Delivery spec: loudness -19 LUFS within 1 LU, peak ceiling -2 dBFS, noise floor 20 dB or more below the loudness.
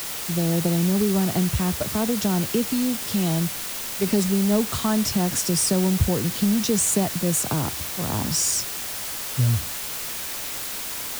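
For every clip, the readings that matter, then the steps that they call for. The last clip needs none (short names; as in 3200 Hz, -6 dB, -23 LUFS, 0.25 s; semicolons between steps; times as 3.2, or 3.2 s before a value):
noise floor -31 dBFS; noise floor target -43 dBFS; loudness -23.0 LUFS; peak -7.0 dBFS; loudness target -19.0 LUFS
-> denoiser 12 dB, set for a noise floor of -31 dBFS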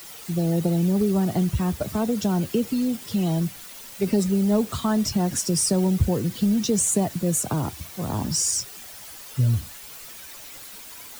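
noise floor -41 dBFS; noise floor target -44 dBFS
-> denoiser 6 dB, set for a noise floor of -41 dBFS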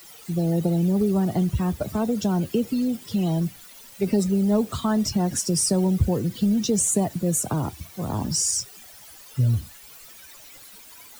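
noise floor -46 dBFS; loudness -23.5 LUFS; peak -8.5 dBFS; loudness target -19.0 LUFS
-> gain +4.5 dB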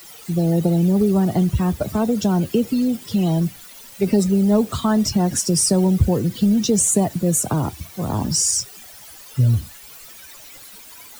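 loudness -19.0 LUFS; peak -4.0 dBFS; noise floor -42 dBFS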